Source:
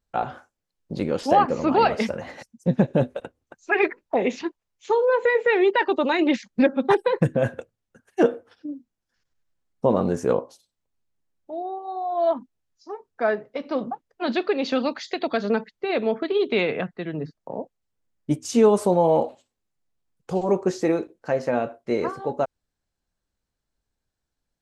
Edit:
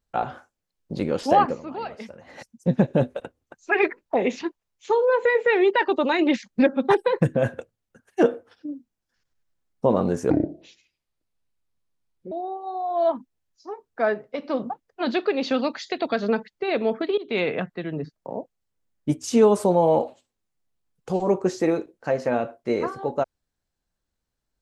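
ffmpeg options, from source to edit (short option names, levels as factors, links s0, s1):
-filter_complex "[0:a]asplit=6[s0][s1][s2][s3][s4][s5];[s0]atrim=end=1.63,asetpts=PTS-STARTPTS,afade=t=out:st=1.49:d=0.14:c=qua:silence=0.199526[s6];[s1]atrim=start=1.63:end=2.23,asetpts=PTS-STARTPTS,volume=0.2[s7];[s2]atrim=start=2.23:end=10.304,asetpts=PTS-STARTPTS,afade=t=in:d=0.14:c=qua:silence=0.199526[s8];[s3]atrim=start=10.3:end=11.53,asetpts=PTS-STARTPTS,asetrate=26901,aresample=44100[s9];[s4]atrim=start=11.526:end=16.39,asetpts=PTS-STARTPTS,afade=t=out:st=4.86:d=0.004:c=hsin:silence=0.0944061[s10];[s5]atrim=start=16.39,asetpts=PTS-STARTPTS,afade=t=in:d=0.27:silence=0.0944061[s11];[s6][s7][s8]concat=n=3:v=0:a=1[s12];[s12][s9]acrossfade=d=0.004:c1=hsin:c2=hsin[s13];[s10][s11]concat=n=2:v=0:a=1[s14];[s13][s14]acrossfade=d=0.004:c1=hsin:c2=hsin"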